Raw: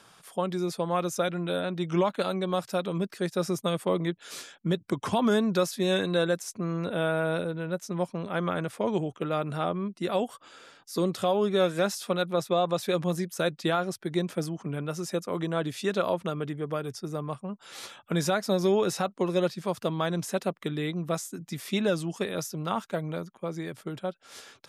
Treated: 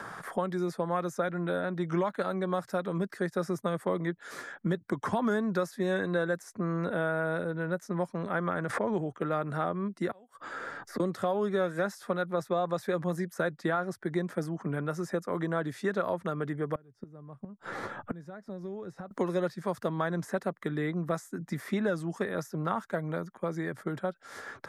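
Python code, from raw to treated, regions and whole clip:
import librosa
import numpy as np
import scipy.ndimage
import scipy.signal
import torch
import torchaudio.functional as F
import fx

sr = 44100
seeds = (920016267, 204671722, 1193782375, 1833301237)

y = fx.chain(x, sr, fx.lowpass(hz=9600.0, slope=12),
    fx.pre_swell(db_per_s=58.0), at=(8.59, 9.09))
y = fx.chain(y, sr, fx.gate_flip(shuts_db=-25.0, range_db=-30),
    fx.band_squash(depth_pct=40), at=(10.11, 11.0))
y = fx.chain(y, sr, fx.tilt_eq(slope=-3.5),
    fx.gate_flip(shuts_db=-25.0, range_db=-30), at=(16.75, 19.11))
y = fx.high_shelf_res(y, sr, hz=2200.0, db=-6.0, q=3.0)
y = fx.band_squash(y, sr, depth_pct=70)
y = y * librosa.db_to_amplitude(-3.5)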